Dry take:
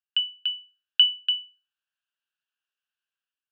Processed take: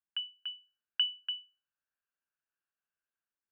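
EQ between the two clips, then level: low-pass 2.4 kHz 24 dB/octave; dynamic bell 1.9 kHz, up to +5 dB, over -39 dBFS, Q 0.77; distance through air 370 m; 0.0 dB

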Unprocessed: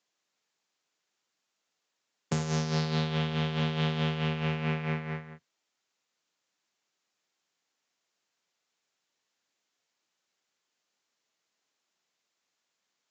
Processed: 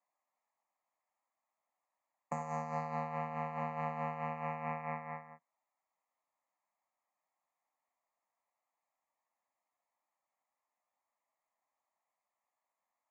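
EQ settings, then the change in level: band-pass 420–5100 Hz; Butterworth band-stop 3.4 kHz, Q 0.63; static phaser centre 1.5 kHz, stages 6; +3.5 dB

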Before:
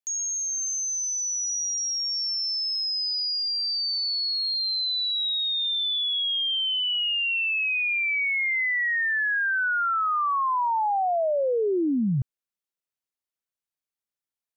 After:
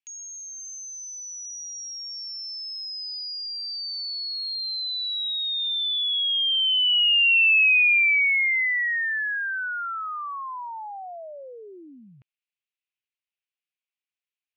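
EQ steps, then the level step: band-pass filter 2.6 kHz, Q 3.5; +8.0 dB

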